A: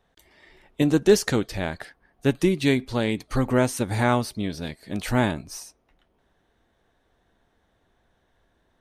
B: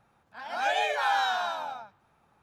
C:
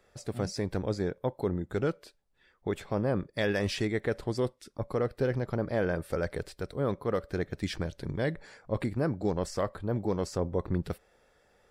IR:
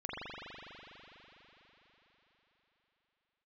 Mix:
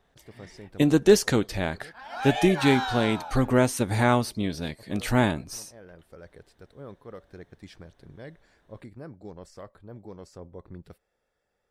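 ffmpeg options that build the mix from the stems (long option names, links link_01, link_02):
-filter_complex "[0:a]volume=0dB,asplit=2[link_01][link_02];[1:a]adelay=1600,volume=-3dB[link_03];[2:a]volume=-13dB[link_04];[link_02]apad=whole_len=516244[link_05];[link_04][link_05]sidechaincompress=threshold=-28dB:ratio=8:attack=39:release=1490[link_06];[link_01][link_03][link_06]amix=inputs=3:normalize=0"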